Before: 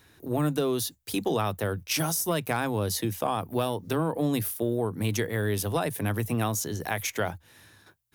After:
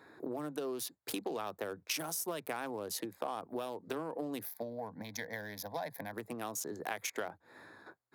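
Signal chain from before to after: Wiener smoothing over 15 samples; 4.45–6.13 fixed phaser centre 1900 Hz, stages 8; compressor 8:1, threshold -41 dBFS, peak gain reduction 18 dB; HPF 300 Hz 12 dB/oct; gain +7 dB

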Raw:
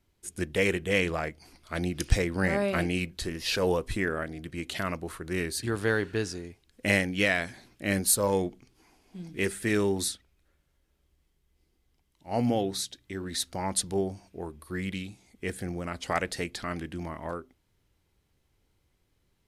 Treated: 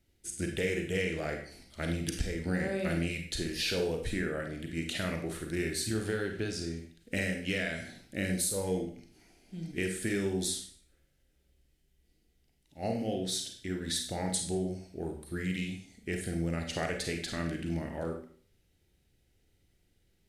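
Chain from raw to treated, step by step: bell 1100 Hz -15 dB 0.53 oct; compressor 6:1, threshold -30 dBFS, peak gain reduction 14.5 dB; Schroeder reverb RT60 0.47 s, combs from 31 ms, DRR 3 dB; speed mistake 25 fps video run at 24 fps

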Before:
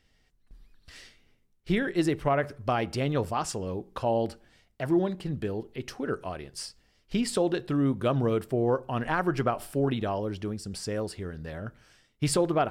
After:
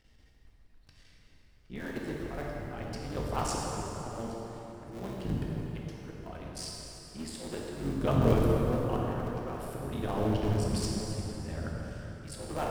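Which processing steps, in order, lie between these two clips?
cycle switcher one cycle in 3, muted; low shelf 170 Hz +6 dB; auto swell 0.627 s; plate-style reverb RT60 3.9 s, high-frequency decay 0.65×, pre-delay 0 ms, DRR -3 dB

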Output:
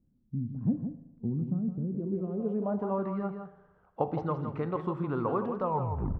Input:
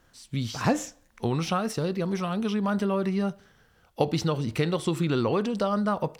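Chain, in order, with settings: tape stop at the end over 0.60 s; on a send: echo 0.164 s -8 dB; on the sum: spring tank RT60 1.1 s, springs 38/57 ms, chirp 60 ms, DRR 13.5 dB; low-pass sweep 220 Hz -> 1100 Hz, 1.83–3.09; gain -7.5 dB

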